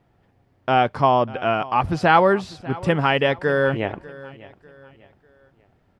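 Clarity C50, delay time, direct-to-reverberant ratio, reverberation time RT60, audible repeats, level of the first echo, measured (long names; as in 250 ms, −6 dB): no reverb audible, 596 ms, no reverb audible, no reverb audible, 2, −19.5 dB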